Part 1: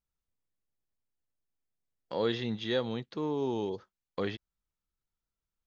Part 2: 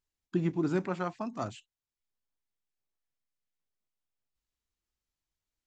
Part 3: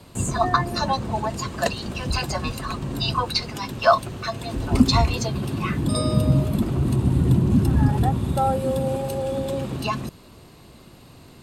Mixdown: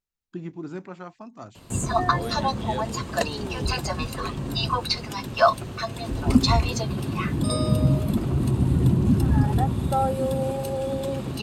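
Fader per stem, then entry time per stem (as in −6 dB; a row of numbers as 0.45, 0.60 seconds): −4.5, −5.5, −1.5 decibels; 0.00, 0.00, 1.55 seconds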